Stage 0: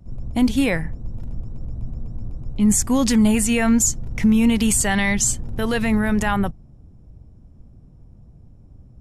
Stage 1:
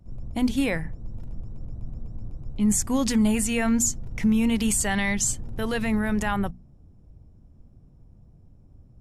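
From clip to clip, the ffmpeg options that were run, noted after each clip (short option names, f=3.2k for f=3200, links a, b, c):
-af "bandreject=f=60:t=h:w=6,bandreject=f=120:t=h:w=6,bandreject=f=180:t=h:w=6,bandreject=f=240:t=h:w=6,volume=-5dB"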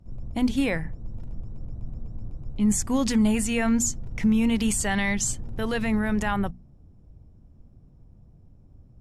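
-af "highshelf=f=11k:g=-9.5"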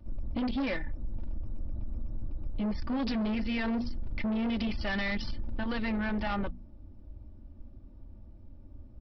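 -af "aecho=1:1:3.4:0.91,aresample=11025,asoftclip=type=tanh:threshold=-23.5dB,aresample=44100,acompressor=threshold=-29dB:ratio=6"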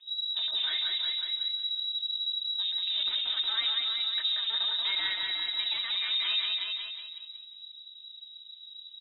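-filter_complex "[0:a]asplit=2[a][b];[b]aecho=0:1:361:0.501[c];[a][c]amix=inputs=2:normalize=0,lowpass=f=3.3k:t=q:w=0.5098,lowpass=f=3.3k:t=q:w=0.6013,lowpass=f=3.3k:t=q:w=0.9,lowpass=f=3.3k:t=q:w=2.563,afreqshift=-3900,asplit=2[d][e];[e]aecho=0:1:182|364|546|728|910:0.668|0.274|0.112|0.0461|0.0189[f];[d][f]amix=inputs=2:normalize=0,volume=-2.5dB"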